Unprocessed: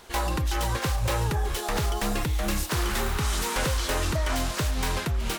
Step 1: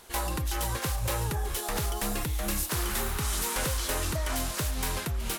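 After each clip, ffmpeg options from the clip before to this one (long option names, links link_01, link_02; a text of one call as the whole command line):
ffmpeg -i in.wav -af "equalizer=frequency=12000:width=0.74:gain=10,volume=-4.5dB" out.wav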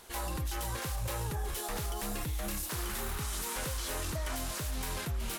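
ffmpeg -i in.wav -af "alimiter=level_in=2.5dB:limit=-24dB:level=0:latency=1:release=17,volume=-2.5dB,volume=-1.5dB" out.wav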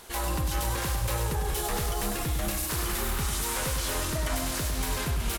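ffmpeg -i in.wav -af "aecho=1:1:100|200|300|400|500|600|700:0.447|0.246|0.135|0.0743|0.0409|0.0225|0.0124,volume=5.5dB" out.wav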